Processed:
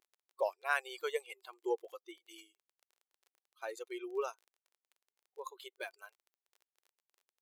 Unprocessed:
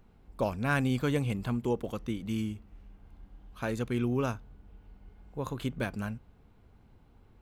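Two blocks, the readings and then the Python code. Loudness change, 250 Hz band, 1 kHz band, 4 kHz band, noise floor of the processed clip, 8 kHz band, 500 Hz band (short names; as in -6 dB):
-7.0 dB, -19.5 dB, -3.5 dB, -5.0 dB, under -85 dBFS, -5.0 dB, -4.5 dB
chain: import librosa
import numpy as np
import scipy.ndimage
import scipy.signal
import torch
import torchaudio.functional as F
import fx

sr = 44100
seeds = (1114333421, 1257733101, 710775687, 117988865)

y = fx.bin_expand(x, sr, power=2.0)
y = fx.dmg_crackle(y, sr, seeds[0], per_s=25.0, level_db=-51.0)
y = fx.brickwall_highpass(y, sr, low_hz=350.0)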